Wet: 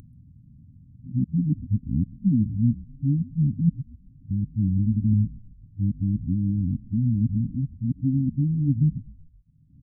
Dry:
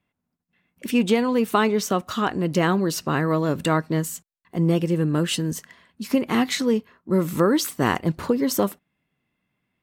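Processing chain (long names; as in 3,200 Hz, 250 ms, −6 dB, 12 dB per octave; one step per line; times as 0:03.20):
played backwards from end to start
upward compression, threshold −24 dBFS
downsampling to 22,050 Hz
echo with shifted repeats 129 ms, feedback 57%, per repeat −78 Hz, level −21 dB
pitch shifter −8 semitones
linear-phase brick-wall band-stop 290–8,400 Hz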